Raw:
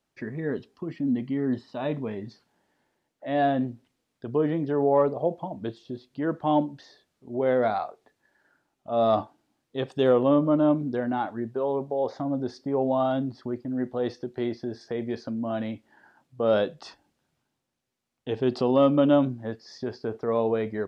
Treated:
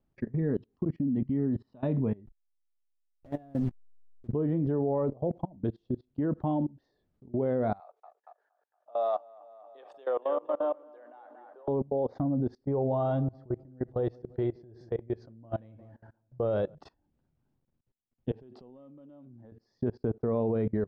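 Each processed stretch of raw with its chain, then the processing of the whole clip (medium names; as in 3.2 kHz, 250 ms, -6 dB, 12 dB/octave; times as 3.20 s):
2.26–4.28 s: send-on-delta sampling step -34 dBFS + compression, threshold -27 dBFS
7.80–11.68 s: high-pass 590 Hz 24 dB/octave + feedback echo behind a low-pass 233 ms, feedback 47%, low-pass 2.8 kHz, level -8 dB
12.60–16.75 s: peaking EQ 240 Hz -12.5 dB 0.41 oct + filtered feedback delay 174 ms, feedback 55%, low-pass 1.3 kHz, level -17 dB
18.31–19.52 s: high-pass 300 Hz 6 dB/octave + compression 2.5:1, threshold -37 dBFS
whole clip: tilt EQ -4.5 dB/octave; level held to a coarse grid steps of 24 dB; trim -3.5 dB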